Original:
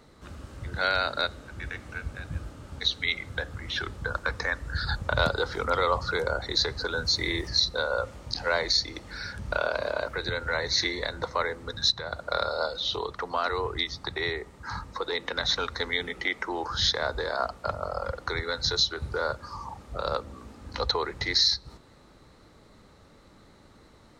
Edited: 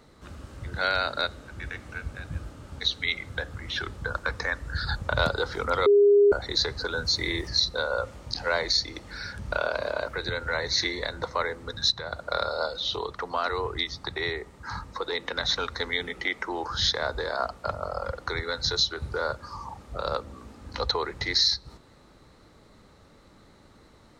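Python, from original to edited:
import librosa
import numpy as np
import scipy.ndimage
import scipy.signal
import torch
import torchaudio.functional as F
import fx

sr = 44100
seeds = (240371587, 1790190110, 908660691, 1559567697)

y = fx.edit(x, sr, fx.bleep(start_s=5.86, length_s=0.46, hz=407.0, db=-14.0), tone=tone)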